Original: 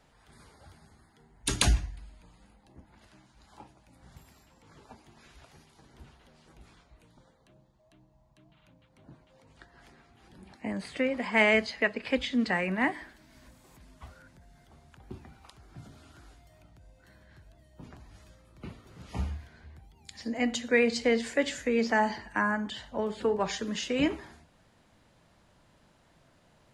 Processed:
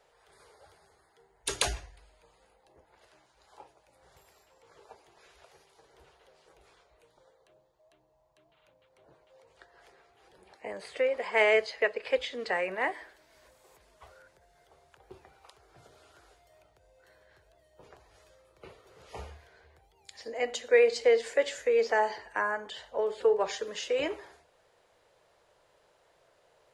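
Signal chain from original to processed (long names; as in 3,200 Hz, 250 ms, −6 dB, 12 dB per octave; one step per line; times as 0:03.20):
low shelf with overshoot 330 Hz −10.5 dB, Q 3
level −2.5 dB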